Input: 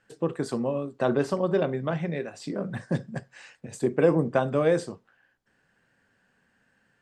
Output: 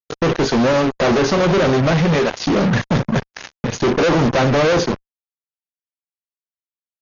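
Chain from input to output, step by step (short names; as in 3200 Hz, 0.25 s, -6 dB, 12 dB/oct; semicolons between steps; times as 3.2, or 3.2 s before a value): fuzz box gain 42 dB, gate -43 dBFS; high shelf 5300 Hz -2.5 dB; AC-3 48 kbps 48000 Hz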